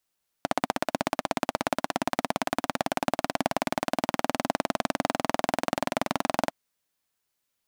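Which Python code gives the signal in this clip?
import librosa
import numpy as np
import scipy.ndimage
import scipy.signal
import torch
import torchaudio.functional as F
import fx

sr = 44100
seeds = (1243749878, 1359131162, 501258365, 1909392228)

y = fx.engine_single_rev(sr, seeds[0], length_s=6.07, rpm=1900, resonances_hz=(270.0, 650.0), end_rpm=2600)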